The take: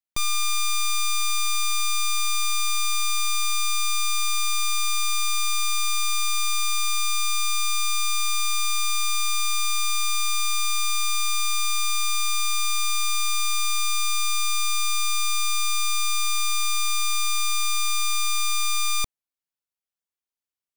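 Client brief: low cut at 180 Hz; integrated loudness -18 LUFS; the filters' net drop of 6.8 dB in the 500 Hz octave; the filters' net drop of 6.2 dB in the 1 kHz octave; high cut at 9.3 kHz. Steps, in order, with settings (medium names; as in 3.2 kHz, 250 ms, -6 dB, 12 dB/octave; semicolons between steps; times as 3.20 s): high-pass 180 Hz; low-pass 9.3 kHz; peaking EQ 500 Hz -6.5 dB; peaking EQ 1 kHz -7 dB; trim +7.5 dB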